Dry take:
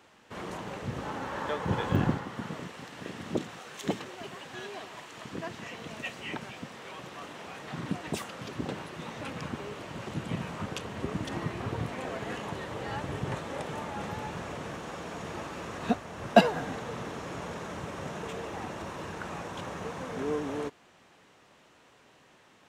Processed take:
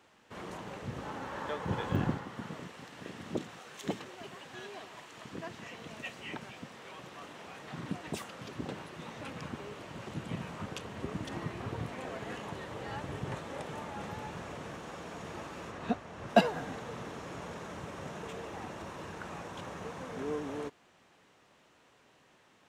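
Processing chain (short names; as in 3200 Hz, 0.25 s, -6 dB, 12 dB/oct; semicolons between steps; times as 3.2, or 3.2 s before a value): 15.7–16.28 high shelf 5200 Hz -> 9300 Hz -8.5 dB; gain -4.5 dB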